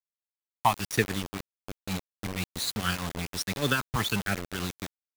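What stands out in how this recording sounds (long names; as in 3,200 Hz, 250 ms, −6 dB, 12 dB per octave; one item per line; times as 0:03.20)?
phaser sweep stages 12, 1.2 Hz, lowest notch 460–1,000 Hz
tremolo triangle 6.3 Hz, depth 65%
a quantiser's noise floor 6 bits, dither none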